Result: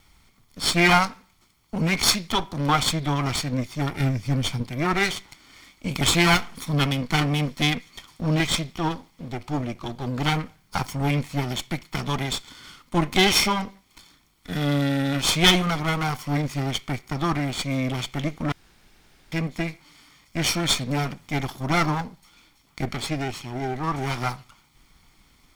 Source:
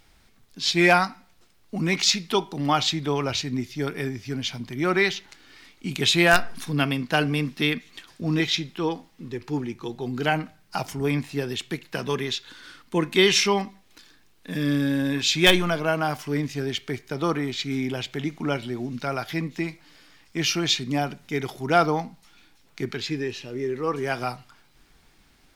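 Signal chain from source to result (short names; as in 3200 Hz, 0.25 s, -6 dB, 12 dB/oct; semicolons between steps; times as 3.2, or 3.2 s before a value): minimum comb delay 0.91 ms; 4–4.63 low shelf 190 Hz +8.5 dB; 18.52–19.32 room tone; gain +2.5 dB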